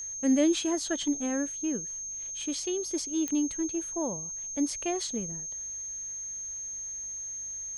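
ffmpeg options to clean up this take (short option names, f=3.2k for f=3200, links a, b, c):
-af "adeclick=t=4,bandreject=f=49.3:t=h:w=4,bandreject=f=98.6:t=h:w=4,bandreject=f=147.9:t=h:w=4,bandreject=f=197.2:t=h:w=4,bandreject=f=6.4k:w=30"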